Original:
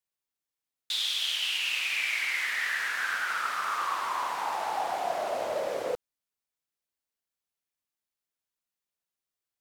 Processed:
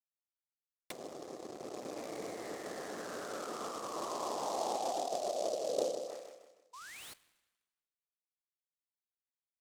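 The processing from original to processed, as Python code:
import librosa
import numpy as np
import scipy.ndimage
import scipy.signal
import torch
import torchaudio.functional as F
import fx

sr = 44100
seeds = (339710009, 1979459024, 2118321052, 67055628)

y = scipy.signal.medfilt(x, 15)
y = fx.quant_dither(y, sr, seeds[0], bits=6, dither='none')
y = fx.cabinet(y, sr, low_hz=400.0, low_slope=12, high_hz=6700.0, hz=(920.0, 1500.0, 2600.0), db=(-9, -8, 3))
y = fx.over_compress(y, sr, threshold_db=-36.0, ratio=-0.5)
y = fx.echo_feedback(y, sr, ms=156, feedback_pct=40, wet_db=-7.5)
y = fx.env_lowpass_down(y, sr, base_hz=570.0, full_db=-38.0)
y = fx.air_absorb(y, sr, metres=480.0)
y = fx.spec_paint(y, sr, seeds[1], shape='rise', start_s=6.73, length_s=0.41, low_hz=950.0, high_hz=4600.0, level_db=-58.0)
y = fx.rev_plate(y, sr, seeds[2], rt60_s=1.3, hf_ratio=0.9, predelay_ms=0, drr_db=16.5)
y = fx.noise_mod_delay(y, sr, seeds[3], noise_hz=5200.0, depth_ms=0.055)
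y = y * librosa.db_to_amplitude(8.5)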